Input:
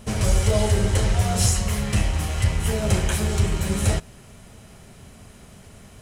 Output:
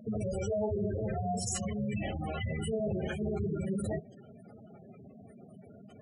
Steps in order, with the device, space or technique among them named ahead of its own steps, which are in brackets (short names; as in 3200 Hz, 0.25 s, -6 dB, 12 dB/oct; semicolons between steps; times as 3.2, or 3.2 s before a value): PA system with an anti-feedback notch (HPF 180 Hz 12 dB/oct; Butterworth band-stop 960 Hz, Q 5.9; limiter -21.5 dBFS, peak gain reduction 10 dB); spectral gate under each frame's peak -10 dB strong; 2.74–3.49 air absorption 140 m